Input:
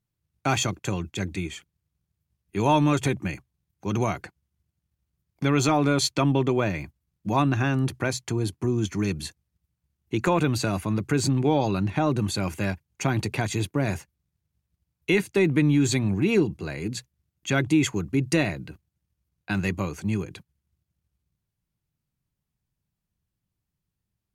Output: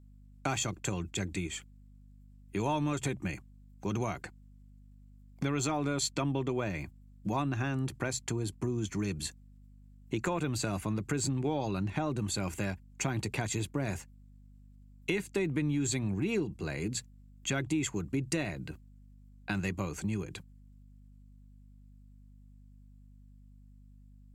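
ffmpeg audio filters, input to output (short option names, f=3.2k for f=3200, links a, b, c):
-af "equalizer=f=7.6k:w=6.5:g=10,acompressor=threshold=-33dB:ratio=2.5,aeval=exprs='val(0)+0.002*(sin(2*PI*50*n/s)+sin(2*PI*2*50*n/s)/2+sin(2*PI*3*50*n/s)/3+sin(2*PI*4*50*n/s)/4+sin(2*PI*5*50*n/s)/5)':c=same"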